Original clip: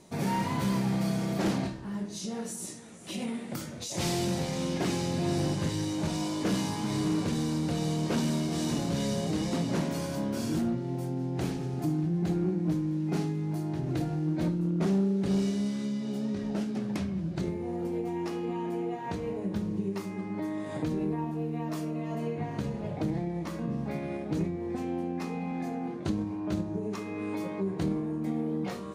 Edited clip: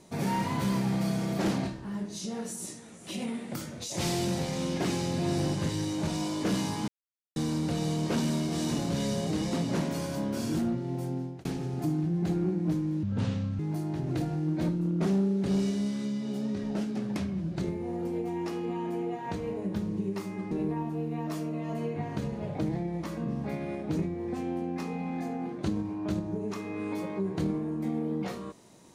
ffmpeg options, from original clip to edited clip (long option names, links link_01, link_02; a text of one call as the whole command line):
ffmpeg -i in.wav -filter_complex "[0:a]asplit=7[link_01][link_02][link_03][link_04][link_05][link_06][link_07];[link_01]atrim=end=6.88,asetpts=PTS-STARTPTS,afade=type=out:start_time=6.876:duration=0.004:curve=hsin[link_08];[link_02]atrim=start=6.88:end=7.36,asetpts=PTS-STARTPTS,volume=0[link_09];[link_03]atrim=start=7.36:end=11.45,asetpts=PTS-STARTPTS,afade=type=in:duration=0.004:curve=hsin,afade=type=out:start_time=3.8:duration=0.29[link_10];[link_04]atrim=start=11.45:end=13.034,asetpts=PTS-STARTPTS,afade=type=in:duration=0.004:curve=hsin[link_11];[link_05]atrim=start=13.03:end=13.39,asetpts=PTS-STARTPTS,asetrate=28224,aresample=44100,atrim=end_sample=24806,asetpts=PTS-STARTPTS[link_12];[link_06]atrim=start=13.386:end=20.312[link_13];[link_07]atrim=start=20.928[link_14];[link_08][link_09][link_10][link_11]concat=n=4:v=0:a=1[link_15];[link_15][link_12]acrossfade=duration=0.004:curve1=hsin:curve2=hsin[link_16];[link_16][link_13]acrossfade=duration=0.004:curve1=hsin:curve2=hsin[link_17];[link_17][link_14]acrossfade=duration=0.004:curve1=hsin:curve2=hsin" out.wav